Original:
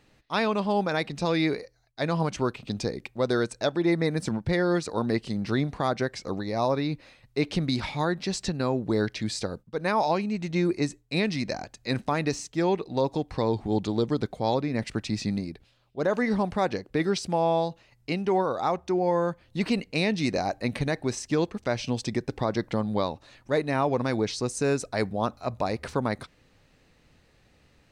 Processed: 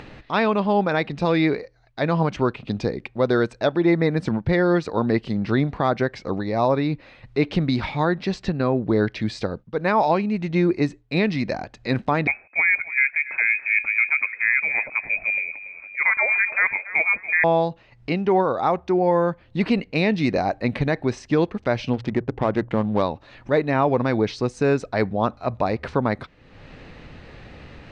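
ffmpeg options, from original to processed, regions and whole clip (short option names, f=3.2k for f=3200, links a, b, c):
-filter_complex "[0:a]asettb=1/sr,asplit=3[a][b][c];[a]atrim=end=8.344[d];[b]atrim=start=8.34:end=9.09,asetpts=PTS-STARTPTS,afade=t=in:d=0.004:c=qsin,afade=t=out:st=0.746:d=0.004:c=qsin,highshelf=f=5.5k:g=-6.5,bandreject=f=880:w=17[e];[c]atrim=start=9.086[f];[d][e]acrossfade=d=0.004:c1=hsin:c2=qsin[g];[g][f]acrossfade=d=0.004:c1=qsin:c2=hsin,asettb=1/sr,asplit=3[h][i][j];[h]atrim=end=12.274[k];[i]atrim=start=12.27:end=17.44,asetpts=PTS-STARTPTS,afade=t=in:d=0.004:c=qsin,afade=t=out:st=5.166:d=0.004:c=qsin,aecho=1:1:284|568|852:0.15|0.0464|0.0144,atrim=end_sample=227997,lowpass=f=2.2k:t=q:w=0.5098,lowpass=f=2.2k:t=q:w=0.6013,lowpass=f=2.2k:t=q:w=0.9,lowpass=f=2.2k:t=q:w=2.563,afreqshift=-2600[l];[j]atrim=start=17.436[m];[k][l]acrossfade=d=0.004:c1=hsin:c2=qsin[n];[n][m]acrossfade=d=0.004:c1=qsin:c2=hsin,asettb=1/sr,asplit=3[o][p][q];[o]atrim=end=21.934[r];[p]atrim=start=21.93:end=23.02,asetpts=PTS-STARTPTS,afade=t=in:d=0.004:c=qsin,afade=t=out:st=1.086:d=0.004:c=qsin,bandreject=f=60:t=h:w=6,bandreject=f=120:t=h:w=6,adynamicsmooth=sensitivity=7.5:basefreq=630[s];[q]atrim=start=23.016[t];[r][s]acrossfade=d=0.004:c1=hsin:c2=qsin[u];[u][t]acrossfade=d=0.004:c1=qsin:c2=hsin,lowpass=3.1k,acompressor=mode=upward:threshold=-34dB:ratio=2.5,volume=5.5dB"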